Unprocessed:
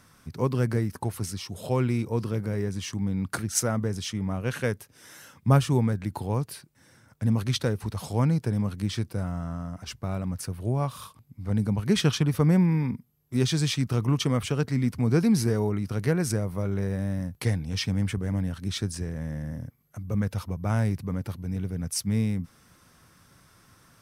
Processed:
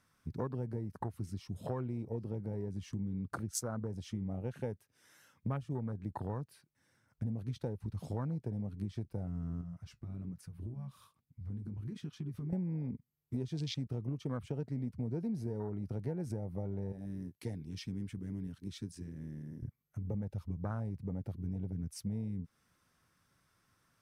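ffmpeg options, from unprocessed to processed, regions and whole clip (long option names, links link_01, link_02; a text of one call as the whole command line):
ffmpeg -i in.wav -filter_complex "[0:a]asettb=1/sr,asplit=3[link_01][link_02][link_03];[link_01]atrim=end=9.614[link_04];[link_02]atrim=start=9.61:end=12.53,asetpts=PTS-STARTPTS,afade=type=in:duration=0.004:curve=qsin,afade=type=out:start_time=2.916:duration=0.004:curve=qsin,acompressor=threshold=-32dB:ratio=6:attack=3.2:release=140:knee=1:detection=peak,flanger=delay=4:depth=8.9:regen=-46:speed=1.2:shape=sinusoidal[link_05];[link_03]atrim=start=12.526[link_06];[link_04][link_05]acrossfade=duration=0.004:curve1=hsin:curve2=qsin[link_07];[link_07][link_06]acrossfade=duration=0.004:curve1=qsin:curve2=hsin,asettb=1/sr,asplit=3[link_08][link_09][link_10];[link_08]atrim=end=16.924[link_11];[link_09]atrim=start=16.92:end=19.63,asetpts=PTS-STARTPTS,afade=type=in:duration=0.004:curve=qsin,afade=type=out:start_time=2.706:duration=0.004:curve=qsin,highpass=frequency=420:poles=1,equalizer=frequency=980:width_type=o:width=2.1:gain=-8[link_12];[link_10]atrim=start=19.626[link_13];[link_11][link_12]acrossfade=duration=0.004:curve1=hsin:curve2=qsin[link_14];[link_14][link_13]acrossfade=duration=0.004:curve1=qsin:curve2=hsin,afwtdn=0.0282,equalizer=frequency=1900:width_type=o:width=2.3:gain=3,acompressor=threshold=-34dB:ratio=6,volume=-1dB" out.wav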